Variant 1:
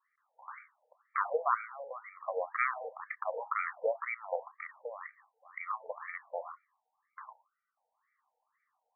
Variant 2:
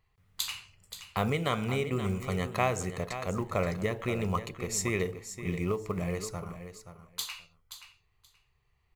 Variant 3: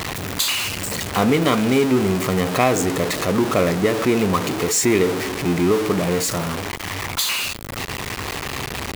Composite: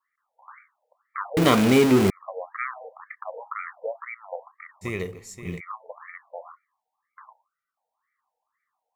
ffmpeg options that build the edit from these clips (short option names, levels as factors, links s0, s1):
-filter_complex "[0:a]asplit=3[s0][s1][s2];[s0]atrim=end=1.372[s3];[2:a]atrim=start=1.368:end=2.102[s4];[s1]atrim=start=2.098:end=4.85[s5];[1:a]atrim=start=4.81:end=5.61[s6];[s2]atrim=start=5.57[s7];[s3][s4]acrossfade=d=0.004:c1=hsin:c2=hsin[s8];[s8][s5]acrossfade=d=0.004:c1=hsin:c2=hsin[s9];[s9][s6]acrossfade=d=0.04:c1=tri:c2=tri[s10];[s10][s7]acrossfade=d=0.04:c1=tri:c2=tri"